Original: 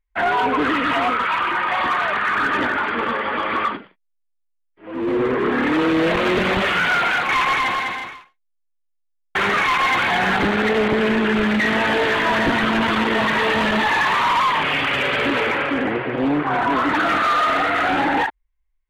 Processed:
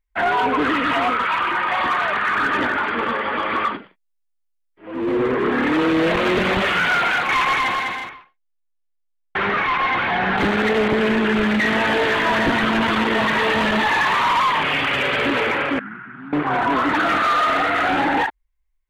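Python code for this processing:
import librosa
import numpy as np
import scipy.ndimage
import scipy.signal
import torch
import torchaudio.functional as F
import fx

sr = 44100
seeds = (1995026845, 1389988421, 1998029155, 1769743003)

y = fx.air_absorb(x, sr, metres=250.0, at=(8.09, 10.38))
y = fx.double_bandpass(y, sr, hz=520.0, octaves=2.9, at=(15.79, 16.33))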